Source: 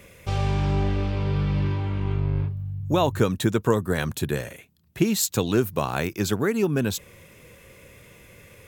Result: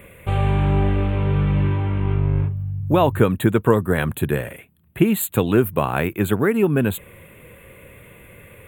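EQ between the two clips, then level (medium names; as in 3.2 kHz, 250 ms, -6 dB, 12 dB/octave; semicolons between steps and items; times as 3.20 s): Butterworth band-stop 5.4 kHz, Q 0.88; +5.0 dB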